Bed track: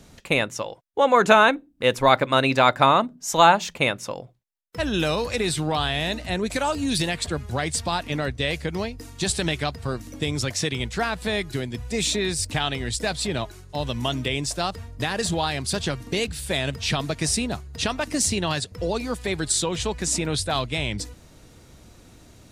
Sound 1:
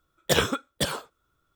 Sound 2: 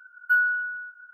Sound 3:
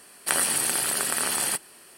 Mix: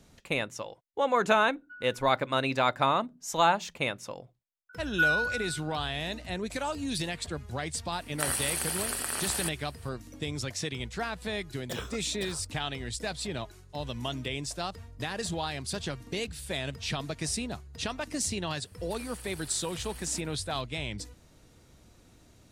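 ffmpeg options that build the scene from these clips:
-filter_complex "[2:a]asplit=2[s0][s1];[3:a]asplit=2[s2][s3];[0:a]volume=0.376[s4];[s0]bandpass=f=2500:t=q:w=4:csg=0[s5];[s3]acompressor=threshold=0.0251:ratio=6:attack=3.2:release=140:knee=1:detection=peak[s6];[s5]atrim=end=1.13,asetpts=PTS-STARTPTS,volume=0.188,afade=t=in:d=0.004:c=hsin,afade=t=out:st=1.126:d=0.004:c=hsin,adelay=1400[s7];[s1]atrim=end=1.13,asetpts=PTS-STARTPTS,volume=0.631,afade=t=in:d=0.004:c=hsin,afade=t=out:st=1.126:d=0.004:c=hsin,adelay=206829S[s8];[s2]atrim=end=1.97,asetpts=PTS-STARTPTS,volume=0.447,afade=t=in:d=0.004:c=hsin,afade=t=out:st=1.966:d=0.004:c=hsin,adelay=7920[s9];[1:a]atrim=end=1.55,asetpts=PTS-STARTPTS,volume=0.168,afade=t=in:d=0.004:c=hsin,afade=t=out:st=1.546:d=0.004:c=hsin,adelay=11400[s10];[s6]atrim=end=1.97,asetpts=PTS-STARTPTS,volume=0.237,afade=t=in:d=0.004:c=hsin,afade=t=out:st=1.966:d=0.004:c=hsin,adelay=18640[s11];[s4][s7][s8][s9][s10][s11]amix=inputs=6:normalize=0"

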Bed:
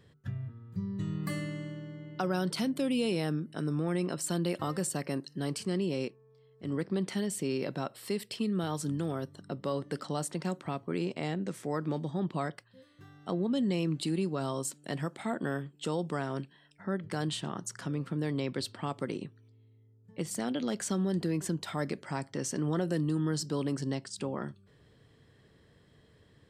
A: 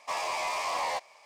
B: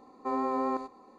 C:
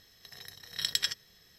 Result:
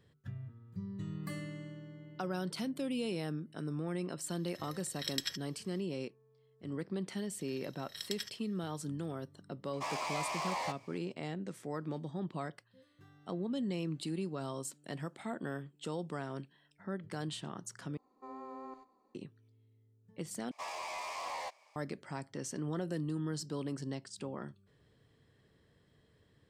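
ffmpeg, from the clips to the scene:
-filter_complex "[3:a]asplit=2[s0][s1];[1:a]asplit=2[s2][s3];[0:a]volume=0.473[s4];[2:a]asplit=2[s5][s6];[s6]adelay=90,highpass=300,lowpass=3400,asoftclip=type=hard:threshold=0.0398,volume=0.158[s7];[s5][s7]amix=inputs=2:normalize=0[s8];[s4]asplit=3[s9][s10][s11];[s9]atrim=end=17.974[s12];[s8]atrim=end=1.18,asetpts=PTS-STARTPTS,volume=0.141[s13];[s10]atrim=start=19.146:end=20.514[s14];[s3]atrim=end=1.25,asetpts=PTS-STARTPTS,volume=0.335[s15];[s11]atrim=start=21.756[s16];[s0]atrim=end=1.58,asetpts=PTS-STARTPTS,volume=0.422,afade=t=in:d=0.004:c=hsin,afade=t=out:st=1.576:d=0.004:c=hsin,adelay=4230[s17];[s1]atrim=end=1.58,asetpts=PTS-STARTPTS,volume=0.251,afade=t=in:d=0.004:c=hsin,afade=t=out:st=1.576:d=0.004:c=hsin,adelay=7160[s18];[s2]atrim=end=1.25,asetpts=PTS-STARTPTS,volume=0.501,afade=t=in:d=0.004:c=hsin,afade=t=out:st=1.246:d=0.004:c=hsin,adelay=9730[s19];[s12][s13]acrossfade=d=0.004:c1=hsin:c2=hsin[s20];[s20][s14]acrossfade=d=0.004:c1=hsin:c2=hsin[s21];[s21][s15]acrossfade=d=0.004:c1=hsin:c2=hsin[s22];[s22][s16]acrossfade=d=0.004:c1=hsin:c2=hsin[s23];[s23][s17][s18][s19]amix=inputs=4:normalize=0"

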